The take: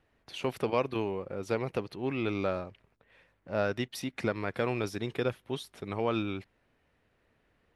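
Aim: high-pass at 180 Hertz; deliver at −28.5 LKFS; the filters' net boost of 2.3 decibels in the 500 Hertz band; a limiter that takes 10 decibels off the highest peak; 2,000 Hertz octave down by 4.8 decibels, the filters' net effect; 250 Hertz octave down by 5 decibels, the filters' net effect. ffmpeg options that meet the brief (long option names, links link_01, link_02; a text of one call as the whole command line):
ffmpeg -i in.wav -af "highpass=180,equalizer=frequency=250:width_type=o:gain=-8.5,equalizer=frequency=500:width_type=o:gain=5.5,equalizer=frequency=2000:width_type=o:gain=-7,volume=9.5dB,alimiter=limit=-16.5dB:level=0:latency=1" out.wav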